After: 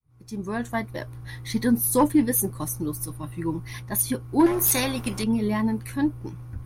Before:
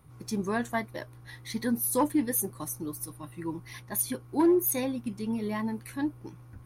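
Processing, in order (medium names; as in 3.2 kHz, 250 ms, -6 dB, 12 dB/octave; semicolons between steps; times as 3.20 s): fade-in on the opening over 1.11 s; bass shelf 130 Hz +11 dB; 4.46–5.24 s: spectrum-flattening compressor 2:1; trim +5 dB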